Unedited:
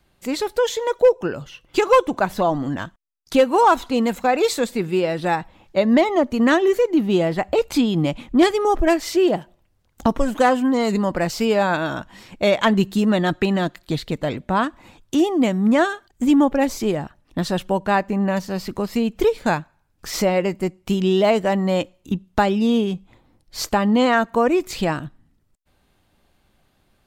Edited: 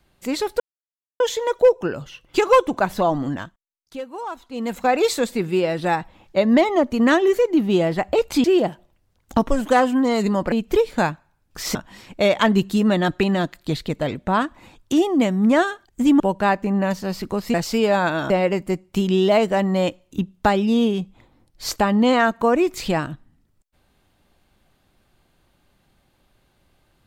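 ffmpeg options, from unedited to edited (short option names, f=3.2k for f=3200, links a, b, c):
-filter_complex "[0:a]asplit=10[a][b][c][d][e][f][g][h][i][j];[a]atrim=end=0.6,asetpts=PTS-STARTPTS,afade=t=out:st=0.596:d=0.004:c=hsin,apad=pad_dur=0.6[k];[b]atrim=start=0.6:end=3.06,asetpts=PTS-STARTPTS,afade=t=in:d=0.004:c=hsin,afade=t=out:st=2.08:d=0.38:silence=0.149624[l];[c]atrim=start=3.06:end=3.89,asetpts=PTS-STARTPTS,volume=-16.5dB[m];[d]atrim=start=3.89:end=7.842,asetpts=PTS-STARTPTS,afade=t=in:d=0.38:silence=0.149624[n];[e]atrim=start=9.128:end=11.212[o];[f]atrim=start=18.998:end=20.232[p];[g]atrim=start=11.968:end=16.422[q];[h]atrim=start=17.658:end=19.002[r];[i]atrim=start=11.208:end=11.972[s];[j]atrim=start=20.228[t];[k][l][m][n]concat=n=4:v=0:a=1[u];[u][o]acrossfade=d=0.004:c1=hsin:c2=hsin[v];[v][p]acrossfade=d=0.004:c1=hsin:c2=hsin[w];[w][q]acrossfade=d=0.004:c1=hsin:c2=hsin[x];[x][r]acrossfade=d=0.004:c1=hsin:c2=hsin[y];[y][s]acrossfade=d=0.004:c1=hsin:c2=hsin[z];[z][t]acrossfade=d=0.004:c1=hsin:c2=hsin"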